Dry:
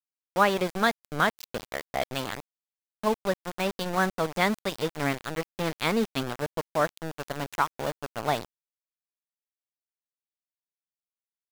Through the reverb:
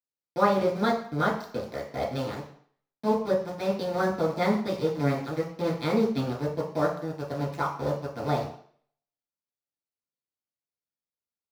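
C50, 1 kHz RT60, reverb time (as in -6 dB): 6.0 dB, 0.60 s, 0.55 s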